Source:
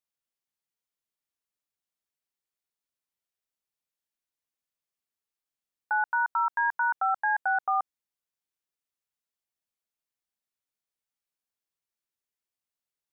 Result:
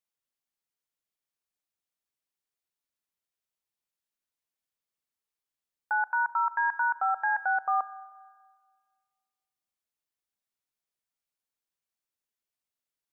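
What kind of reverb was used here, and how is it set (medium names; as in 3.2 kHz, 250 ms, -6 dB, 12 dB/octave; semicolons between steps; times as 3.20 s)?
spring tank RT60 1.7 s, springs 31/39 ms, chirp 65 ms, DRR 17 dB; trim -1 dB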